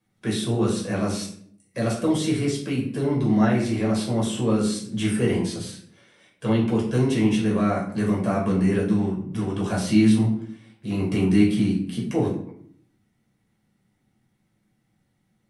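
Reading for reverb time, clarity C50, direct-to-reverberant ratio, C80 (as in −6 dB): 0.65 s, 6.0 dB, −4.0 dB, 10.0 dB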